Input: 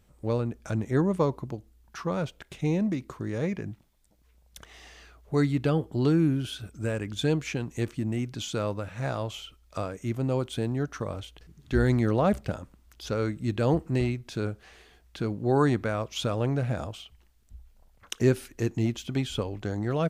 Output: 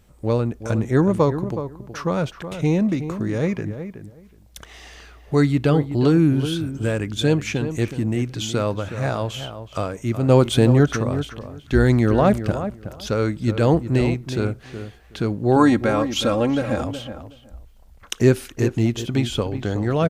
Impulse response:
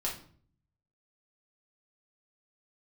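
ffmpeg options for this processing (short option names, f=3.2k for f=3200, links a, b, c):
-filter_complex "[0:a]asplit=3[a][b][c];[a]afade=t=out:st=10.28:d=0.02[d];[b]acontrast=78,afade=t=in:st=10.28:d=0.02,afade=t=out:st=10.95:d=0.02[e];[c]afade=t=in:st=10.95:d=0.02[f];[d][e][f]amix=inputs=3:normalize=0,asettb=1/sr,asplit=3[g][h][i];[g]atrim=end=15.564[j];[h]atrim=start=15.56:end=16.81,asetpts=PTS-STARTPTS,afade=t=in:d=0.004:c=qsin,afade=t=out:st=1.246:d=0.004:c=qsin,aecho=1:1:3.7:0.69,atrim=end_sample=55125[k];[i]atrim=start=16.806[l];[j][k]acrossfade=d=0.004:c1=hsin:c2=qsin[m];[m][l]acrossfade=d=0.004:c1=qsin:c2=hsin,asplit=2[n][o];[o]adelay=370,lowpass=f=1.8k:p=1,volume=-10dB,asplit=2[p][q];[q]adelay=370,lowpass=f=1.8k:p=1,volume=0.17[r];[n][p][r]amix=inputs=3:normalize=0,volume=7dB"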